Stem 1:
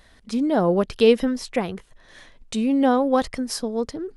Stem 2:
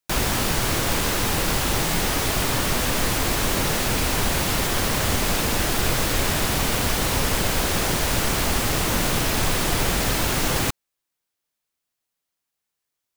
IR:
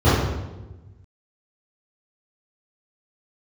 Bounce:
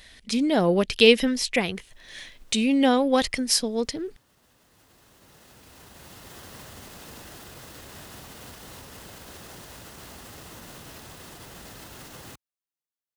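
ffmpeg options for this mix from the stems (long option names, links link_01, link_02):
-filter_complex "[0:a]highshelf=frequency=1700:width_type=q:width=1.5:gain=8.5,volume=-1dB,asplit=2[link_01][link_02];[1:a]alimiter=limit=-18dB:level=0:latency=1:release=65,highpass=56,bandreject=frequency=2300:width=12,adelay=1650,volume=-15.5dB[link_03];[link_02]apad=whole_len=653398[link_04];[link_03][link_04]sidechaincompress=threshold=-50dB:ratio=4:attack=16:release=1320[link_05];[link_01][link_05]amix=inputs=2:normalize=0"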